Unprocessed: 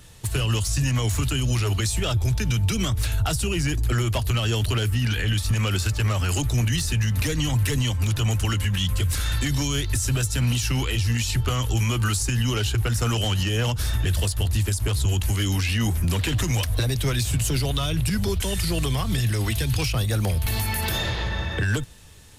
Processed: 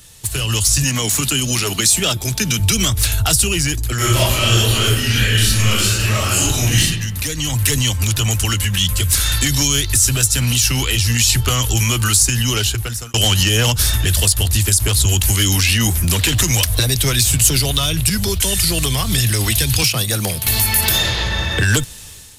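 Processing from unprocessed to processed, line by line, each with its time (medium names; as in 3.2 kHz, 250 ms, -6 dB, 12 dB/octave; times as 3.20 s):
0.84–2.60 s: resonant low shelf 120 Hz -11.5 dB, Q 1.5
3.96–6.80 s: reverb throw, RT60 0.91 s, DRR -9 dB
12.59–13.14 s: fade out
19.83–20.47 s: high-pass 110 Hz 24 dB/octave
whole clip: treble shelf 3 kHz +12 dB; level rider; trim -1 dB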